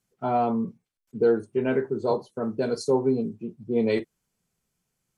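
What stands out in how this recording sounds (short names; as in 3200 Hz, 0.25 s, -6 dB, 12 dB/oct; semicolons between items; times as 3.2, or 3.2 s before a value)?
noise floor -80 dBFS; spectral tilt -4.5 dB/oct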